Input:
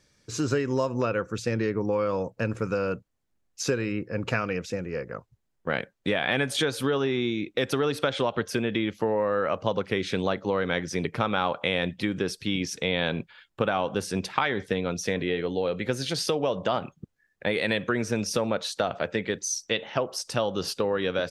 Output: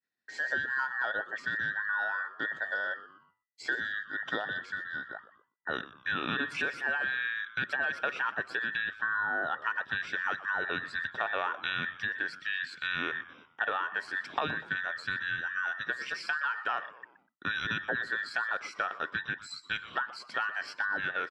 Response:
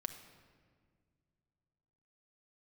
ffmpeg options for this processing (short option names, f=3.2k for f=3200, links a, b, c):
-filter_complex "[0:a]afftfilt=real='real(if(between(b,1,1012),(2*floor((b-1)/92)+1)*92-b,b),0)':imag='imag(if(between(b,1,1012),(2*floor((b-1)/92)+1)*92-b,b),0)*if(between(b,1,1012),-1,1)':win_size=2048:overlap=0.75,asplit=5[a][b][c][d][e];[b]adelay=122,afreqshift=-130,volume=-16.5dB[f];[c]adelay=244,afreqshift=-260,volume=-23.8dB[g];[d]adelay=366,afreqshift=-390,volume=-31.2dB[h];[e]adelay=488,afreqshift=-520,volume=-38.5dB[i];[a][f][g][h][i]amix=inputs=5:normalize=0,agate=range=-33dB:threshold=-53dB:ratio=3:detection=peak,highpass=120,lowpass=3.6k,volume=-6dB"